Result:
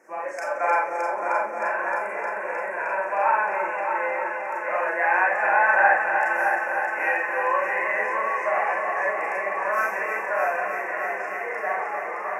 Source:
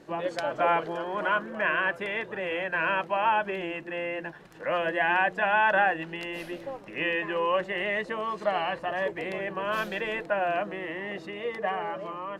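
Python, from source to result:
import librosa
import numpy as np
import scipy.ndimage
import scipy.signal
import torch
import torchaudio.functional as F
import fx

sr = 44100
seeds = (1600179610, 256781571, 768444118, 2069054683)

y = scipy.signal.sosfilt(scipy.signal.ellip(3, 1.0, 80, [2300.0, 5600.0], 'bandstop', fs=sr, output='sos'), x)
y = fx.spec_box(y, sr, start_s=0.97, length_s=2.06, low_hz=1000.0, high_hz=6500.0, gain_db=-7)
y = scipy.signal.sosfilt(scipy.signal.butter(2, 700.0, 'highpass', fs=sr, output='sos'), y)
y = fx.echo_heads(y, sr, ms=309, heads='first and second', feedback_pct=71, wet_db=-8.5)
y = fx.rev_schroeder(y, sr, rt60_s=0.34, comb_ms=29, drr_db=-2.0)
y = F.gain(torch.from_numpy(y), 1.5).numpy()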